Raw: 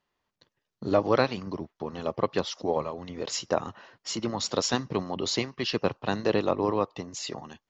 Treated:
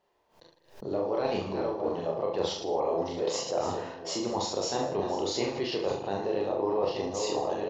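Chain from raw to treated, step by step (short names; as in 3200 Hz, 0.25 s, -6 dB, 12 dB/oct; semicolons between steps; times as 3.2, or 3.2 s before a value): reverse delay 0.699 s, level -14 dB; band shelf 560 Hz +9.5 dB; limiter -9 dBFS, peak gain reduction 7.5 dB; reverse; compressor, threshold -29 dBFS, peak gain reduction 14.5 dB; reverse; doubler 42 ms -4 dB; on a send: reverse bouncing-ball echo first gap 30 ms, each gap 1.2×, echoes 5; on the sum: backwards sustainer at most 140 dB/s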